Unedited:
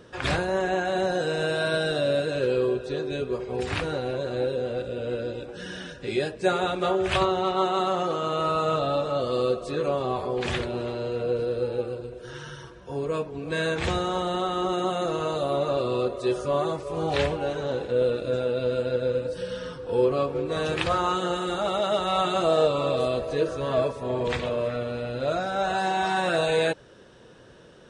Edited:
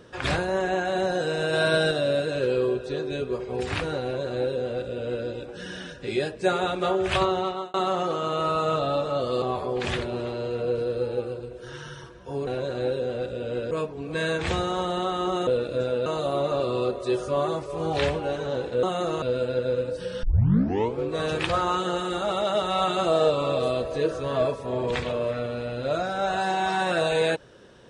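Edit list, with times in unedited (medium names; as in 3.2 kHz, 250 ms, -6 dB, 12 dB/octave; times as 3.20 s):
1.53–1.91 s: gain +3.5 dB
4.03–5.27 s: copy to 13.08 s
7.38–7.74 s: fade out
9.42–10.03 s: delete
14.84–15.23 s: swap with 18.00–18.59 s
19.60 s: tape start 0.76 s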